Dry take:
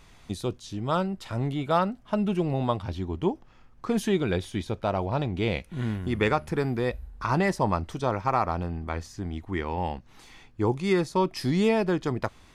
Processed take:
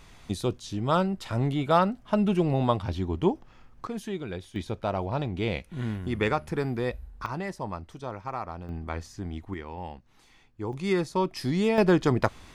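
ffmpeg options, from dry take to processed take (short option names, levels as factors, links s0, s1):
-af "asetnsamples=n=441:p=0,asendcmd='3.87 volume volume -9dB;4.56 volume volume -2dB;7.26 volume volume -9.5dB;8.69 volume volume -2dB;9.54 volume volume -8.5dB;10.73 volume volume -2dB;11.78 volume volume 5dB',volume=1.26"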